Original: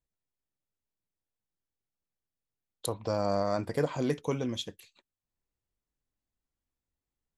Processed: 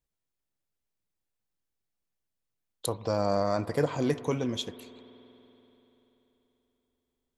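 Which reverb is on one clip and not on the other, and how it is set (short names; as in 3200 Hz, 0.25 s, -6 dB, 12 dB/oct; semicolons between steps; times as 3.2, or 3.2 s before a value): spring tank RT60 3.8 s, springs 48 ms, chirp 50 ms, DRR 15.5 dB; gain +2 dB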